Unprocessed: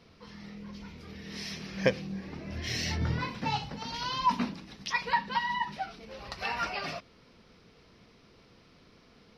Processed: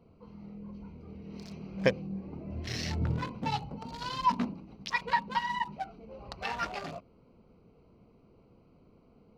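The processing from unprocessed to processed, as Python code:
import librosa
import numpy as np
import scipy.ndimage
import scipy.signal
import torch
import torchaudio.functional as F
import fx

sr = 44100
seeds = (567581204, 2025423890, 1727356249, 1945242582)

y = fx.wiener(x, sr, points=25)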